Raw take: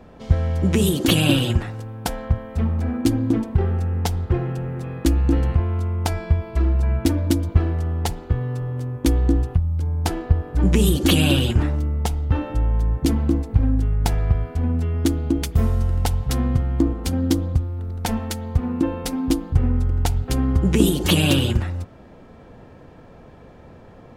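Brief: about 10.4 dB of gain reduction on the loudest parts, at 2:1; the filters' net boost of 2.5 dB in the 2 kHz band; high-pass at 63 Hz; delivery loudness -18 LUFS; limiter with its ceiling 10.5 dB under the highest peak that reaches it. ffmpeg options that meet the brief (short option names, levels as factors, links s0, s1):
-af "highpass=63,equalizer=f=2000:t=o:g=3.5,acompressor=threshold=0.0282:ratio=2,volume=5.01,alimiter=limit=0.422:level=0:latency=1"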